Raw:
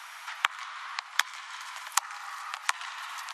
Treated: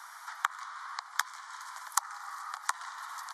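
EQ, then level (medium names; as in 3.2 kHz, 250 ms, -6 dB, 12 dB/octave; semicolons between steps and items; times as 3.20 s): static phaser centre 1.1 kHz, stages 4; -1.0 dB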